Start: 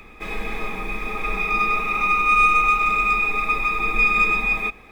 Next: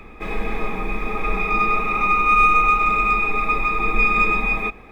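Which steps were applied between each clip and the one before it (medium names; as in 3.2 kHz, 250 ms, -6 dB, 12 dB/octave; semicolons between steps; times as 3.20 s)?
treble shelf 2.2 kHz -10.5 dB; trim +5 dB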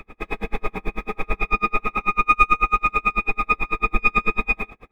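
logarithmic tremolo 9.1 Hz, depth 38 dB; trim +4 dB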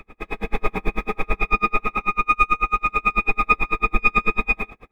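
level rider; trim -2.5 dB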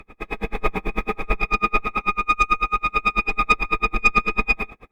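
Chebyshev shaper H 4 -20 dB, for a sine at -3 dBFS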